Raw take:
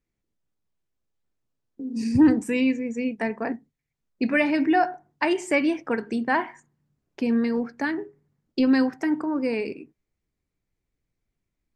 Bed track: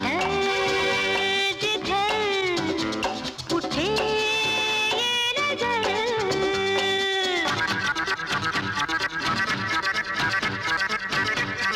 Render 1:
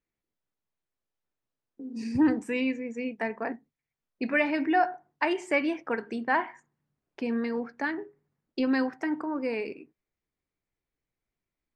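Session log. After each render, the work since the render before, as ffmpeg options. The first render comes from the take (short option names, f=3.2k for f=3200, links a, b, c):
-af "lowpass=f=2.5k:p=1,lowshelf=f=340:g=-11"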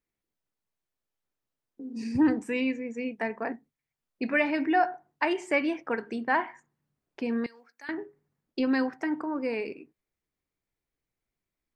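-filter_complex "[0:a]asettb=1/sr,asplit=3[a][b][c];[a]atrim=end=7.464[d];[b]atrim=start=7.46:end=7.89,asetpts=PTS-STARTPTS,afade=t=in:d=0.004:c=qsin,afade=t=out:st=0.426:d=0.004:c=qsin,aderivative[e];[c]atrim=start=7.886[f];[d][e]acrossfade=d=0.004:c1=hsin:c2=qsin[g];[g][f]acrossfade=d=0.004:c1=qsin:c2=hsin"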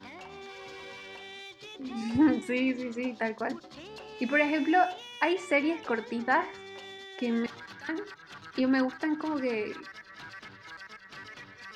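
-filter_complex "[1:a]volume=-21.5dB[a];[0:a][a]amix=inputs=2:normalize=0"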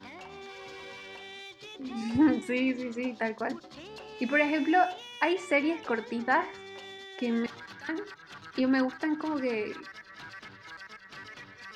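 -af anull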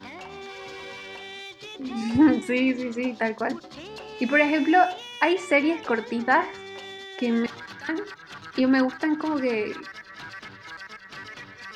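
-af "volume=5.5dB"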